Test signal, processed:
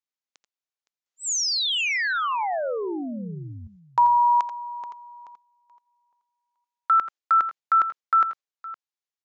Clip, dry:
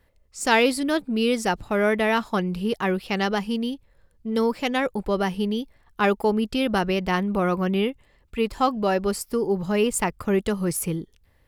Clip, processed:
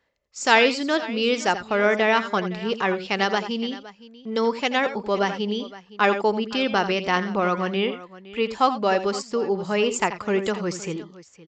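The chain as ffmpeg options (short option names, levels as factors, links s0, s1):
-af "agate=range=0.501:threshold=0.00501:ratio=16:detection=peak,highpass=f=460:p=1,aecho=1:1:83|88|514:0.211|0.158|0.126,aresample=16000,aresample=44100,volume=1.5"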